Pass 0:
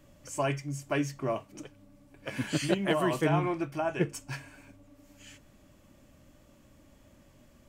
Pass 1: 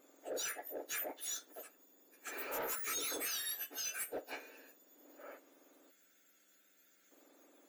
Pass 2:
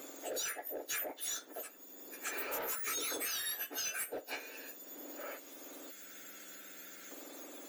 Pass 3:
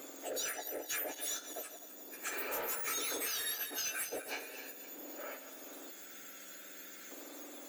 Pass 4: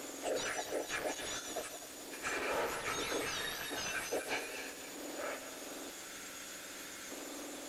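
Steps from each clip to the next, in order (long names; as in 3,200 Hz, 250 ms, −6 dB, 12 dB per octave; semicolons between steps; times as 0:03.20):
frequency axis turned over on the octave scale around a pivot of 2,000 Hz; gain on a spectral selection 0:05.90–0:07.11, 210–1,300 Hz −14 dB; soft clipping −34 dBFS, distortion −11 dB; level −1 dB
multiband upward and downward compressor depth 70%; level +2.5 dB
feedback delay that plays each chunk backwards 128 ms, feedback 65%, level −10.5 dB
linear delta modulator 64 kbit/s, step −50.5 dBFS; level +4.5 dB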